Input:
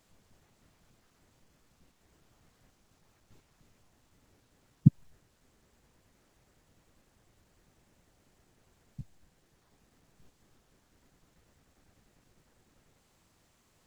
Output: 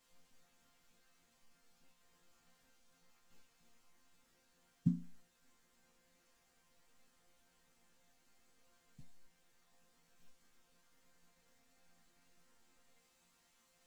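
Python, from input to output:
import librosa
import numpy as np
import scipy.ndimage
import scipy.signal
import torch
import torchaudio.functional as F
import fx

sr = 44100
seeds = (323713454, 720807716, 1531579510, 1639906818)

y = fx.tilt_shelf(x, sr, db=-4.5, hz=760.0)
y = fx.resonator_bank(y, sr, root=53, chord='sus4', decay_s=0.34)
y = y * 10.0 ** (10.5 / 20.0)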